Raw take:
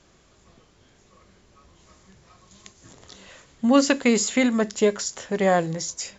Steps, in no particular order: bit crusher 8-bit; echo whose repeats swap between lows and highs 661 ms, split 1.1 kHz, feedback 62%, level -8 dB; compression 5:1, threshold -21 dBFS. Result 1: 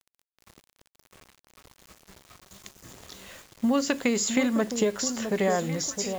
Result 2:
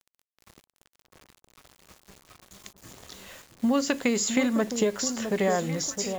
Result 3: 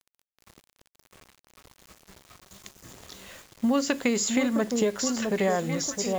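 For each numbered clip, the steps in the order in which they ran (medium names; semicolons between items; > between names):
compression > echo whose repeats swap between lows and highs > bit crusher; compression > bit crusher > echo whose repeats swap between lows and highs; echo whose repeats swap between lows and highs > compression > bit crusher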